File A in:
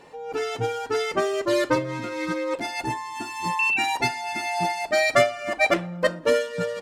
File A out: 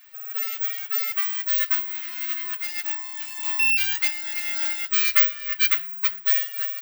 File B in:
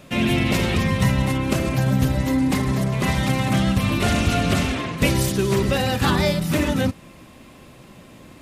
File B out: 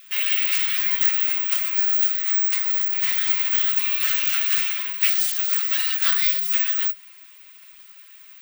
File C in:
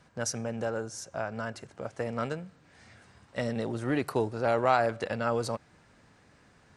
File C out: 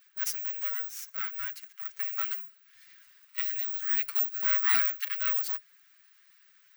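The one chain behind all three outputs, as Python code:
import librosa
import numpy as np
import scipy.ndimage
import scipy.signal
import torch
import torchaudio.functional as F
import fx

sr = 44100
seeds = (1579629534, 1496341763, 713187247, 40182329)

y = fx.lower_of_two(x, sr, delay_ms=6.7)
y = (np.kron(y[::2], np.eye(2)[0]) * 2)[:len(y)]
y = scipy.signal.sosfilt(scipy.signal.cheby2(4, 70, 330.0, 'highpass', fs=sr, output='sos'), y)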